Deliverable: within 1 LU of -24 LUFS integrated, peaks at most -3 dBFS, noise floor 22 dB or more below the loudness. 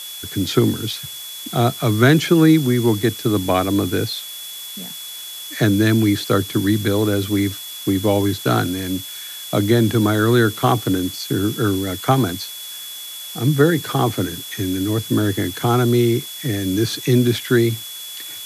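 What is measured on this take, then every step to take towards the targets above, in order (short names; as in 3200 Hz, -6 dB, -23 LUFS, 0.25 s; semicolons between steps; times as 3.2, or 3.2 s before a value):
steady tone 3400 Hz; tone level -33 dBFS; noise floor -33 dBFS; noise floor target -41 dBFS; loudness -18.5 LUFS; peak -1.5 dBFS; loudness target -24.0 LUFS
-> notch 3400 Hz, Q 30; denoiser 8 dB, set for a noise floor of -33 dBFS; gain -5.5 dB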